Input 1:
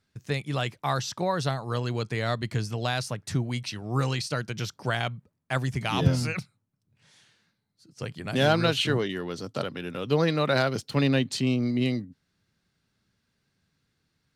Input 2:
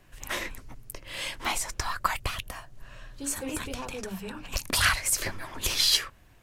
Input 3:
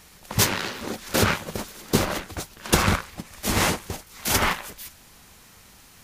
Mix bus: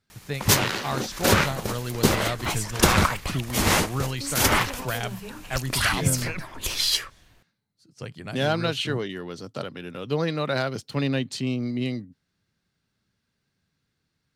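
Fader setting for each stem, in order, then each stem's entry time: -2.0 dB, -0.5 dB, +1.0 dB; 0.00 s, 1.00 s, 0.10 s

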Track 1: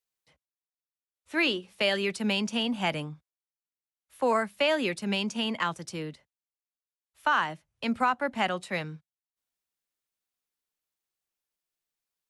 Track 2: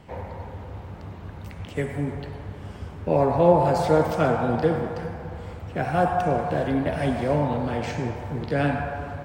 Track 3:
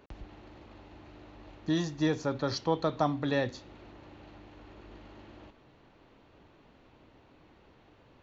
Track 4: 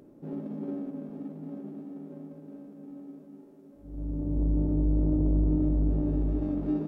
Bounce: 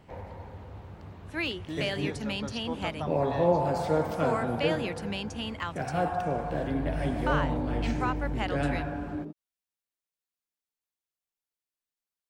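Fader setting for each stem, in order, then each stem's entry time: -6.0 dB, -7.0 dB, -8.5 dB, -7.5 dB; 0.00 s, 0.00 s, 0.00 s, 2.45 s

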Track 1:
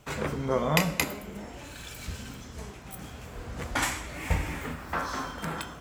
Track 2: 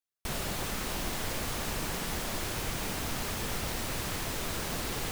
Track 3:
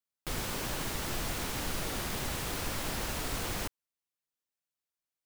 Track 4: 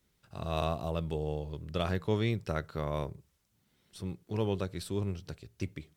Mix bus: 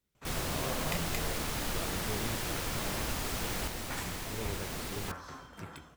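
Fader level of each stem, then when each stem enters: -13.5 dB, -5.0 dB, -2.0 dB, -10.5 dB; 0.15 s, 0.00 s, 0.00 s, 0.00 s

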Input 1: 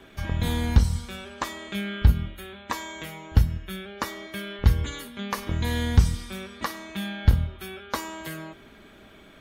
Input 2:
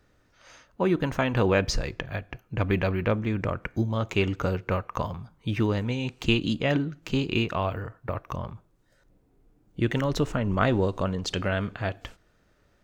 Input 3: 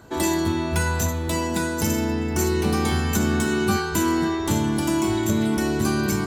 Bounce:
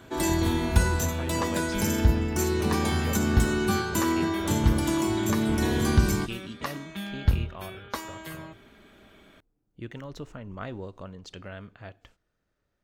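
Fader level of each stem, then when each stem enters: -4.0 dB, -14.0 dB, -4.0 dB; 0.00 s, 0.00 s, 0.00 s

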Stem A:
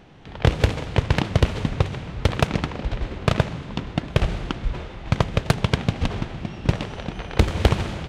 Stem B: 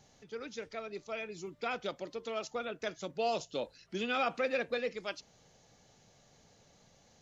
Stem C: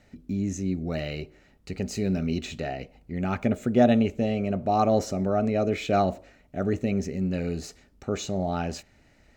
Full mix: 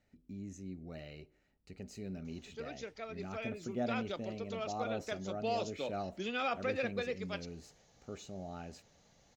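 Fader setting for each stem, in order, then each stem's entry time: mute, -3.0 dB, -17.0 dB; mute, 2.25 s, 0.00 s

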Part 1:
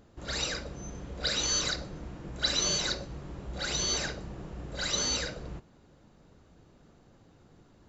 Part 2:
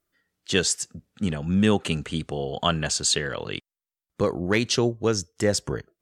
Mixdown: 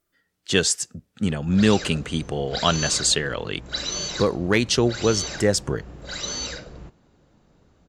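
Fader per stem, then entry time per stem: 0.0 dB, +2.5 dB; 1.30 s, 0.00 s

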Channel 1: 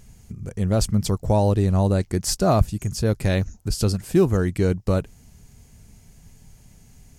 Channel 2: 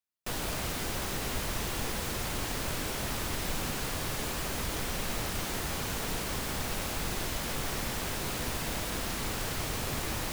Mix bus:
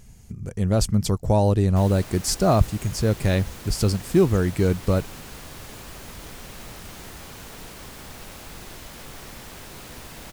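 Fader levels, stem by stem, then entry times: 0.0 dB, -6.5 dB; 0.00 s, 1.50 s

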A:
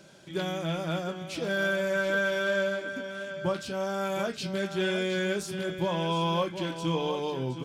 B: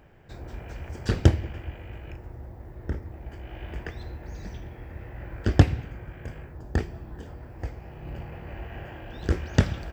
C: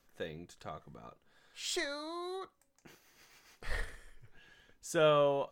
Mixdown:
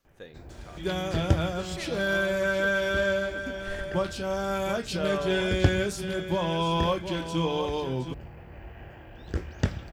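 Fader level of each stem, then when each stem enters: +1.5 dB, -6.0 dB, -4.0 dB; 0.50 s, 0.05 s, 0.00 s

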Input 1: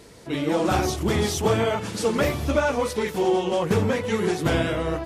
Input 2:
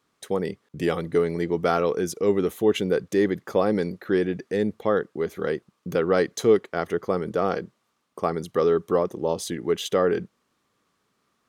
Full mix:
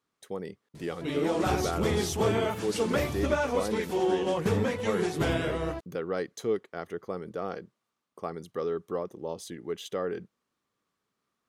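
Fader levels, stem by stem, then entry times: -5.5 dB, -10.5 dB; 0.75 s, 0.00 s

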